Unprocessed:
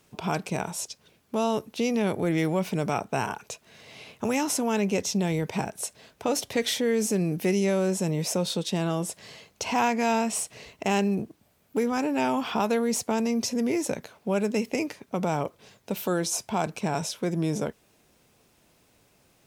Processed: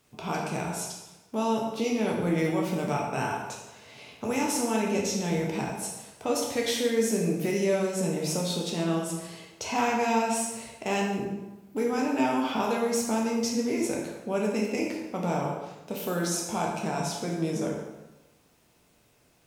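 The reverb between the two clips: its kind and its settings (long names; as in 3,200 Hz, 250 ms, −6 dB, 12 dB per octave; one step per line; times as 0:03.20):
dense smooth reverb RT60 1.1 s, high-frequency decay 0.75×, DRR −2 dB
level −5 dB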